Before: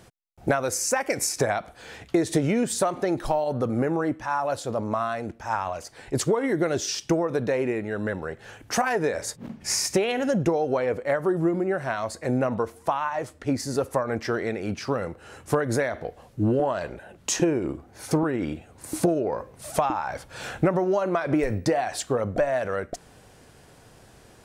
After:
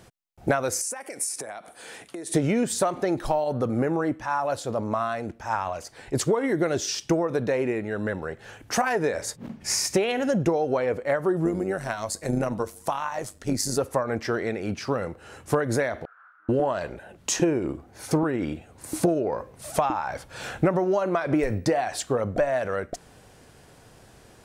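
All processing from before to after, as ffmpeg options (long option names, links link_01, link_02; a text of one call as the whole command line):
ffmpeg -i in.wav -filter_complex "[0:a]asettb=1/sr,asplit=3[link_01][link_02][link_03];[link_01]atrim=end=0.814[link_04];[link_02]atrim=start=0.81:end=2.34,asetpts=PTS-STARTPTS,afade=type=in:duration=0.004:curve=qsin,afade=type=out:start_time=1.526:duration=0.004:curve=qsin,acompressor=threshold=-37dB:ratio=3:attack=3.2:release=140:knee=1:detection=peak,highpass=220,equalizer=frequency=9400:width_type=o:width=0.45:gain=15[link_05];[link_03]atrim=start=2.336[link_06];[link_04][link_05]acrossfade=duration=0.004:curve1=hsin:curve2=qsin[link_07];[link_07][link_06]acrossfade=duration=0.004:curve1=qsin:curve2=hsin,asettb=1/sr,asplit=3[link_08][link_09][link_10];[link_08]atrim=end=11.454[link_11];[link_09]atrim=start=11.45:end=13.78,asetpts=PTS-STARTPTS,afade=type=in:duration=0.004:curve=qsin,afade=type=out:start_time=2.326:duration=0.004:curve=qsin,bass=frequency=250:gain=3,treble=frequency=4000:gain=12,tremolo=f=100:d=0.621[link_12];[link_10]atrim=start=13.776[link_13];[link_11][link_12]acrossfade=duration=0.004:curve1=hsin:curve2=qsin[link_14];[link_14][link_13]acrossfade=duration=0.004:curve1=qsin:curve2=hsin,asettb=1/sr,asplit=3[link_15][link_16][link_17];[link_15]atrim=end=16.054[link_18];[link_16]atrim=start=16.05:end=16.49,asetpts=PTS-STARTPTS,afade=type=in:duration=0.004:curve=qsin,afade=type=out:start_time=0.436:duration=0.004:curve=qsin,aeval=exprs='val(0)+0.5*0.0211*sgn(val(0))':channel_layout=same,asuperpass=centerf=1400:order=4:qfactor=5.2,asplit=2[link_19][link_20];[link_20]adelay=32,volume=-4dB[link_21];[link_19][link_21]amix=inputs=2:normalize=0,atrim=end_sample=19404[link_22];[link_17]atrim=start=16.486[link_23];[link_18][link_22]acrossfade=duration=0.004:curve1=hsin:curve2=qsin[link_24];[link_24][link_23]acrossfade=duration=0.004:curve1=qsin:curve2=hsin" out.wav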